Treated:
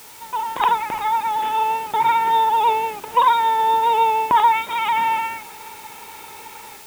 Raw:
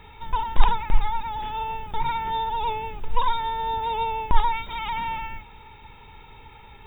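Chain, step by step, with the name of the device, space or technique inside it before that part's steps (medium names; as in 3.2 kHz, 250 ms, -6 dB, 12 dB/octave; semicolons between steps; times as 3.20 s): dictaphone (band-pass 330–3000 Hz; level rider gain up to 10 dB; wow and flutter 21 cents; white noise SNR 23 dB)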